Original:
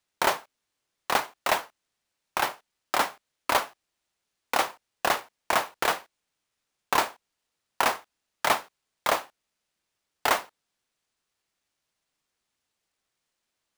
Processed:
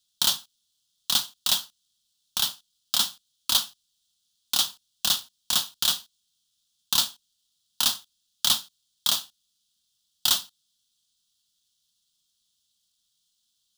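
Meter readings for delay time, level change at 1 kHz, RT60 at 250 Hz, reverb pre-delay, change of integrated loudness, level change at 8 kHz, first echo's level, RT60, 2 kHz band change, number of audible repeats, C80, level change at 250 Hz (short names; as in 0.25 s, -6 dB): none, -13.0 dB, none, none, +3.0 dB, +9.0 dB, none, none, -10.5 dB, none, none, -6.0 dB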